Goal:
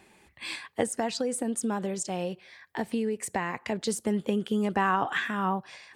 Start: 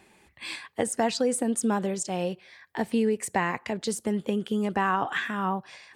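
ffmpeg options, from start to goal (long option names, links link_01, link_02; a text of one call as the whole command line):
ffmpeg -i in.wav -filter_complex "[0:a]asplit=3[link_01][link_02][link_03];[link_01]afade=type=out:start_time=0.85:duration=0.02[link_04];[link_02]acompressor=threshold=-29dB:ratio=2,afade=type=in:start_time=0.85:duration=0.02,afade=type=out:start_time=3.64:duration=0.02[link_05];[link_03]afade=type=in:start_time=3.64:duration=0.02[link_06];[link_04][link_05][link_06]amix=inputs=3:normalize=0" out.wav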